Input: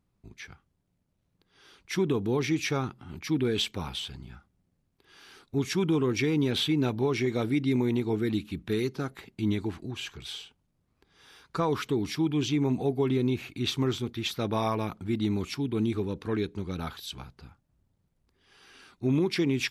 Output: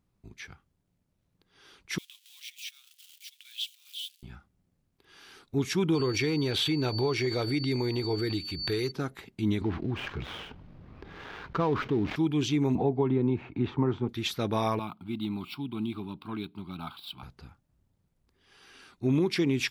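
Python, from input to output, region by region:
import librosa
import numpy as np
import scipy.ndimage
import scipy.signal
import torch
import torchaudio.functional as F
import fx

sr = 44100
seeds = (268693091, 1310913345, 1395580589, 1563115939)

y = fx.chain(x, sr, fx.crossing_spikes(level_db=-29.5),
    fx.ladder_highpass(hz=2700.0, resonance_pct=55),
    fx.transient(attack_db=-5, sustain_db=-10), at=(1.98, 4.23))
y = fx.peak_eq(y, sr, hz=220.0, db=-12.5, octaves=0.47, at=(5.94, 8.9), fade=0.02)
y = fx.dmg_tone(y, sr, hz=4500.0, level_db=-41.0, at=(5.94, 8.9), fade=0.02)
y = fx.pre_swell(y, sr, db_per_s=71.0, at=(5.94, 8.9), fade=0.02)
y = fx.chain(y, sr, fx.dead_time(dead_ms=0.11),
    fx.air_absorb(metres=300.0),
    fx.env_flatten(amount_pct=50), at=(9.61, 12.16))
y = fx.chain(y, sr, fx.lowpass(hz=1400.0, slope=12),
    fx.peak_eq(hz=900.0, db=8.0, octaves=0.31),
    fx.band_squash(depth_pct=70), at=(12.75, 14.09))
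y = fx.chain(y, sr, fx.median_filter(points=5),
    fx.highpass(hz=170.0, slope=12),
    fx.fixed_phaser(hz=1800.0, stages=6), at=(14.79, 17.23))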